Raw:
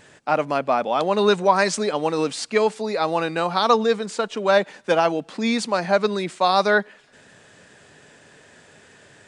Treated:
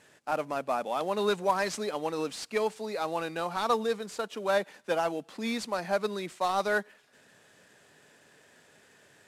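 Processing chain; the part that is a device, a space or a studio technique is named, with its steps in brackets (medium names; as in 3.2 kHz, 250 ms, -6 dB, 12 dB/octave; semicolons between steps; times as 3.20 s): early wireless headset (high-pass 150 Hz 6 dB/octave; CVSD coder 64 kbps); trim -9 dB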